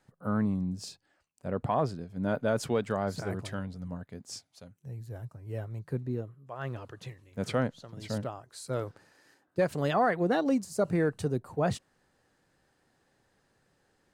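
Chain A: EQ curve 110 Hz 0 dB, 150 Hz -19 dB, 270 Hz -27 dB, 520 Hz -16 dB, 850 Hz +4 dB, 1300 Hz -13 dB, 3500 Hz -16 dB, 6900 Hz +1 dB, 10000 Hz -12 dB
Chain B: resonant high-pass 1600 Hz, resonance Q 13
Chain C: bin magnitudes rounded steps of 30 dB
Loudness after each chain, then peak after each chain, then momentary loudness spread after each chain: -40.5, -28.0, -32.5 LUFS; -20.0, -7.0, -16.0 dBFS; 13, 21, 15 LU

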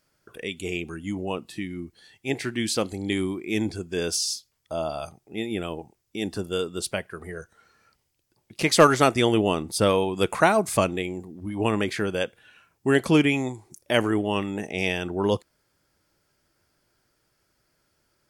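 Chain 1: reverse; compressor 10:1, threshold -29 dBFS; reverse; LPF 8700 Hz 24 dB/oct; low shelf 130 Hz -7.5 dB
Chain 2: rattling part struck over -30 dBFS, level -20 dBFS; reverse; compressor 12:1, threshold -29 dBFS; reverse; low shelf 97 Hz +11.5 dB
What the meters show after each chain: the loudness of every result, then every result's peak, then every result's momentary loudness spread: -36.0, -34.0 LUFS; -18.5, -16.0 dBFS; 8, 6 LU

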